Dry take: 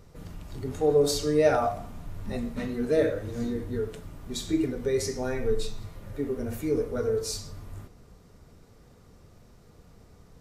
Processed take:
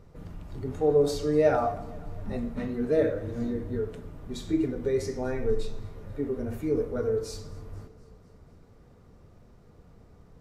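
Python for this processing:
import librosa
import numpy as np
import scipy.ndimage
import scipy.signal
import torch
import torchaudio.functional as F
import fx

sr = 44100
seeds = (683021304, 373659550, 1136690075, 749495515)

y = fx.high_shelf(x, sr, hz=2800.0, db=-11.0)
y = fx.echo_feedback(y, sr, ms=244, feedback_pct=60, wet_db=-22)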